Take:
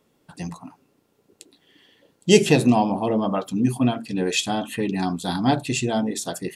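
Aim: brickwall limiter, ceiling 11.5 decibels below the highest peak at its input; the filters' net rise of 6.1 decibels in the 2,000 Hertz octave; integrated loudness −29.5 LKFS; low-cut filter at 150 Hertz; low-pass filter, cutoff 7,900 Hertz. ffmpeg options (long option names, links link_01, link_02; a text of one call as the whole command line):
ffmpeg -i in.wav -af "highpass=150,lowpass=7900,equalizer=frequency=2000:width_type=o:gain=8.5,volume=-5.5dB,alimiter=limit=-17dB:level=0:latency=1" out.wav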